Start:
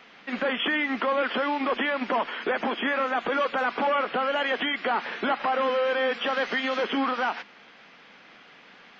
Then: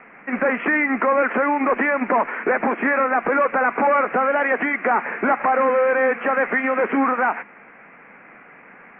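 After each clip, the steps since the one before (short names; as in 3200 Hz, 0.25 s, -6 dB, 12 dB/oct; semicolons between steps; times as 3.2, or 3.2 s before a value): steep low-pass 2400 Hz 72 dB/oct; gain +7 dB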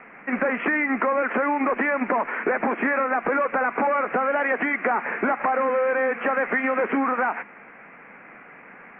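compressor, threshold -19 dBFS, peak gain reduction 5.5 dB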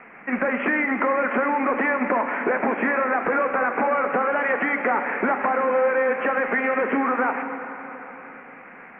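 plate-style reverb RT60 3.9 s, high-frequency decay 0.75×, DRR 6 dB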